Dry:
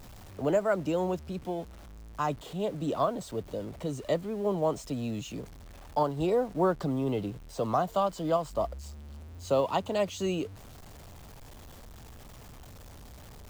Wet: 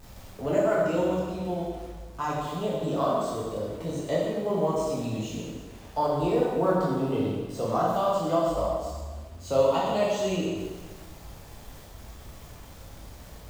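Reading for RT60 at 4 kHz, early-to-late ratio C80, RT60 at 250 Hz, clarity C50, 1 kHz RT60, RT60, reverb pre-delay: 1.3 s, 1.5 dB, 1.5 s, −0.5 dB, 1.4 s, 1.4 s, 5 ms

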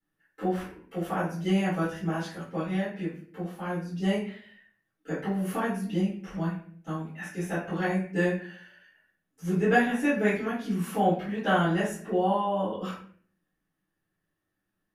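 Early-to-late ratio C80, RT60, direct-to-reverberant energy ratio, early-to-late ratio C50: 8.5 dB, 0.50 s, −14.5 dB, 3.5 dB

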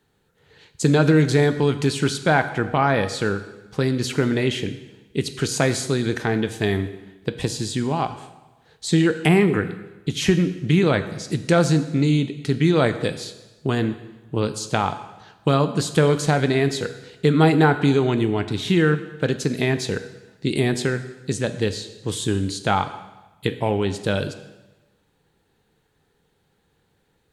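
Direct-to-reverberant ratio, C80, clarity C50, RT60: 9.5 dB, 13.5 dB, 12.5 dB, 1.1 s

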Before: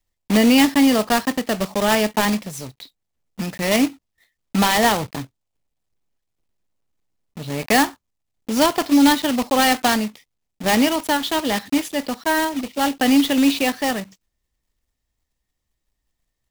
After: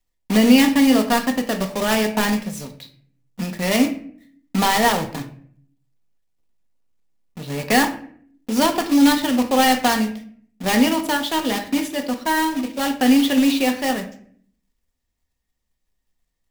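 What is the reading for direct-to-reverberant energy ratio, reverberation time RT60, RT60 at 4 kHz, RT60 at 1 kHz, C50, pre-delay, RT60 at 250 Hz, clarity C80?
4.5 dB, 0.55 s, 0.35 s, 0.50 s, 11.0 dB, 4 ms, 0.85 s, 15.0 dB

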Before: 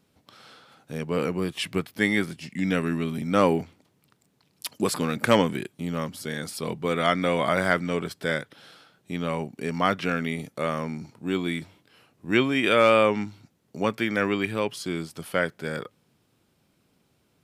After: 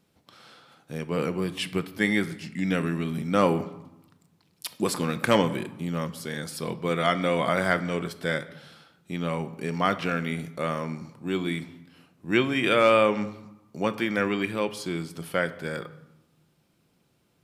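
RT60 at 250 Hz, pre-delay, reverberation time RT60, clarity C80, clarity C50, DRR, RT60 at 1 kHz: 1.2 s, 6 ms, 0.90 s, 17.5 dB, 15.5 dB, 11.0 dB, 1.0 s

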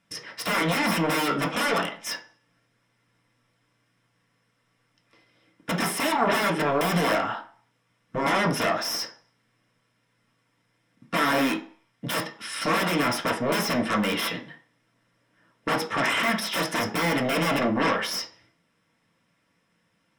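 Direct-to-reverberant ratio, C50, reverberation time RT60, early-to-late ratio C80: −1.0 dB, 11.5 dB, 0.45 s, 16.5 dB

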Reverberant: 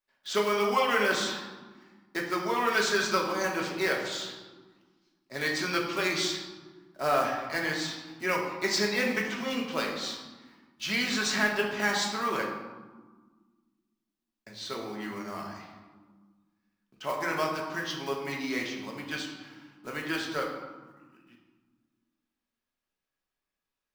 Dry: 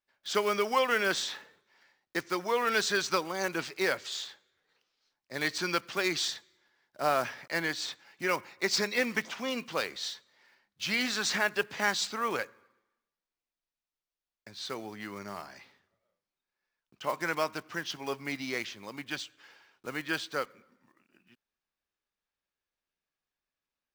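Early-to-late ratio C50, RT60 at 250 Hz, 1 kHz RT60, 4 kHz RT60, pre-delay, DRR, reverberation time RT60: 4.0 dB, 2.2 s, 1.4 s, 0.80 s, 3 ms, −1.0 dB, 1.5 s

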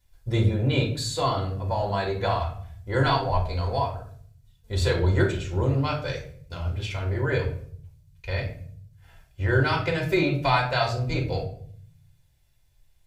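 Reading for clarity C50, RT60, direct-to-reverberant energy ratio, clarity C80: 8.0 dB, 0.55 s, −2.0 dB, 12.5 dB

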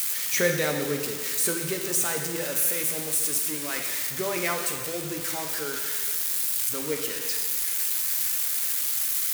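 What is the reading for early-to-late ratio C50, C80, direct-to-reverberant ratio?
5.0 dB, 6.5 dB, 2.5 dB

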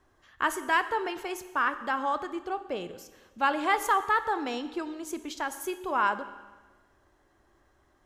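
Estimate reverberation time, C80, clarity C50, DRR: 1.3 s, 14.0 dB, 13.0 dB, 11.0 dB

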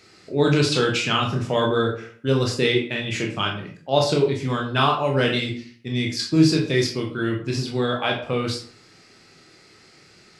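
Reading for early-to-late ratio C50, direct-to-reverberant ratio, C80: 7.5 dB, 0.5 dB, 11.5 dB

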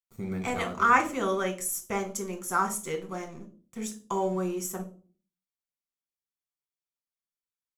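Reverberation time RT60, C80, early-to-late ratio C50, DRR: 0.40 s, 19.0 dB, 13.5 dB, 2.5 dB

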